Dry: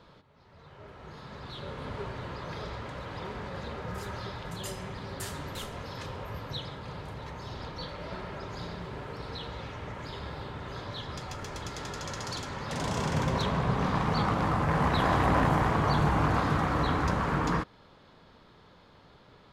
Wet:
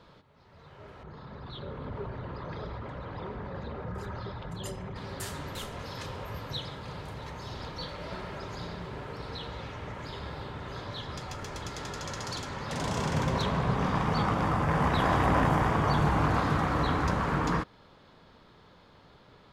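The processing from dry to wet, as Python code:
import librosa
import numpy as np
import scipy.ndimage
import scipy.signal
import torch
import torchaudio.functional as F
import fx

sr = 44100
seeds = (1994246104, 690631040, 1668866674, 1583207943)

y = fx.envelope_sharpen(x, sr, power=1.5, at=(1.03, 4.96))
y = fx.high_shelf(y, sr, hz=4600.0, db=4.5, at=(5.79, 8.56))
y = fx.notch(y, sr, hz=4100.0, q=12.0, at=(13.74, 16.04))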